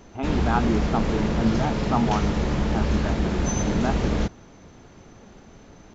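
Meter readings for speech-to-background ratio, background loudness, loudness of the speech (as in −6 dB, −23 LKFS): −3.0 dB, −25.5 LKFS, −28.5 LKFS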